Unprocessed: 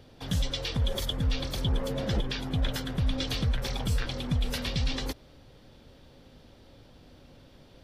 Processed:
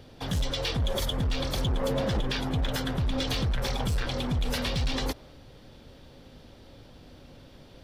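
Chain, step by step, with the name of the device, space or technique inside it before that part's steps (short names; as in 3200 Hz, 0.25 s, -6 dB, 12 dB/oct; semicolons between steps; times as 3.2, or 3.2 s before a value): limiter into clipper (limiter -22.5 dBFS, peak gain reduction 4.5 dB; hard clip -26.5 dBFS, distortion -17 dB); dynamic EQ 860 Hz, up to +4 dB, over -53 dBFS, Q 0.75; gain +3.5 dB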